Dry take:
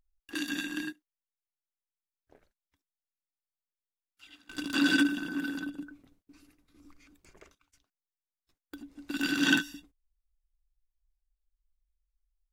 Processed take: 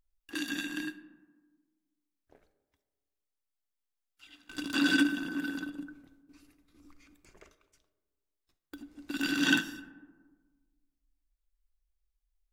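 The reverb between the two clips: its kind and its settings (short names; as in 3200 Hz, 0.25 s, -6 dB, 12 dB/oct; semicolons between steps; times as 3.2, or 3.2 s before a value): digital reverb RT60 1.5 s, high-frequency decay 0.35×, pre-delay 5 ms, DRR 13.5 dB; gain -1 dB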